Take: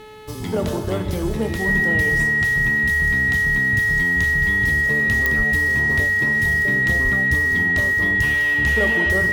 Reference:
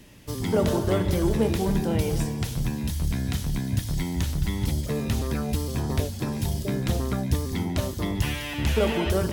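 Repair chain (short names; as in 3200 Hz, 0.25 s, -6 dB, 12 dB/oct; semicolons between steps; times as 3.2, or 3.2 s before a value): de-click; de-hum 430 Hz, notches 10; notch 1900 Hz, Q 30; de-plosive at 5.37/7.03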